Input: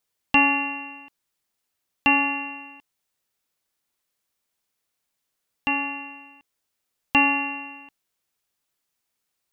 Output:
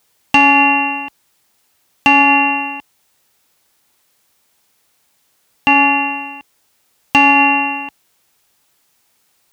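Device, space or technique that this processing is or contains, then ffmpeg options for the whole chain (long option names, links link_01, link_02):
mastering chain: -af "highpass=42,equalizer=frequency=840:width_type=o:width=0.24:gain=3.5,acompressor=threshold=-28dB:ratio=1.5,asoftclip=type=tanh:threshold=-11dB,asoftclip=type=hard:threshold=-14.5dB,alimiter=level_in=19.5dB:limit=-1dB:release=50:level=0:latency=1,volume=-1dB"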